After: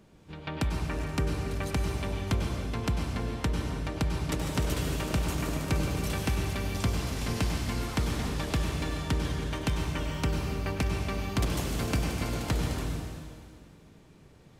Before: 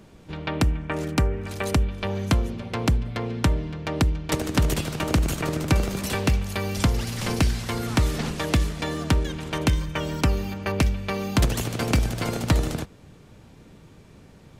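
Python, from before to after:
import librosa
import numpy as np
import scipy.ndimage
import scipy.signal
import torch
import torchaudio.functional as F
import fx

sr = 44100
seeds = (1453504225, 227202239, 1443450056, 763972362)

y = fx.rev_plate(x, sr, seeds[0], rt60_s=2.0, hf_ratio=1.0, predelay_ms=85, drr_db=0.5)
y = F.gain(torch.from_numpy(y), -8.5).numpy()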